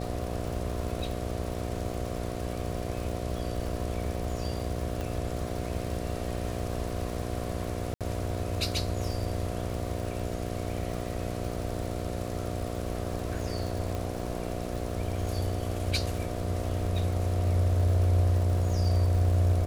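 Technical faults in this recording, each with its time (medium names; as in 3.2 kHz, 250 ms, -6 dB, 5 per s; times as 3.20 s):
buzz 60 Hz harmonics 12 -35 dBFS
crackle 230 per s -37 dBFS
5.01 s: pop
7.94–8.01 s: dropout 67 ms
13.95 s: pop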